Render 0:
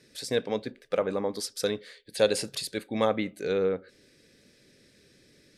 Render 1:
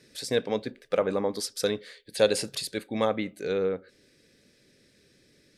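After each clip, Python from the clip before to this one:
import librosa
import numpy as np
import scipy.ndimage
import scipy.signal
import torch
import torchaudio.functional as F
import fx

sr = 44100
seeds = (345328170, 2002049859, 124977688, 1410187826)

y = fx.rider(x, sr, range_db=10, speed_s=2.0)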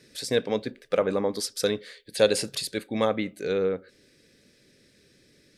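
y = fx.peak_eq(x, sr, hz=830.0, db=-2.0, octaves=0.77)
y = F.gain(torch.from_numpy(y), 2.0).numpy()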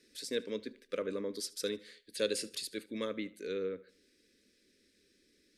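y = fx.fixed_phaser(x, sr, hz=320.0, stages=4)
y = fx.echo_feedback(y, sr, ms=75, feedback_pct=42, wet_db=-21)
y = F.gain(torch.from_numpy(y), -8.5).numpy()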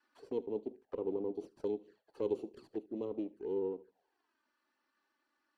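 y = fx.lower_of_two(x, sr, delay_ms=0.68)
y = fx.auto_wah(y, sr, base_hz=380.0, top_hz=1200.0, q=3.6, full_db=-42.0, direction='down')
y = fx.env_flanger(y, sr, rest_ms=3.5, full_db=-45.5)
y = F.gain(torch.from_numpy(y), 9.5).numpy()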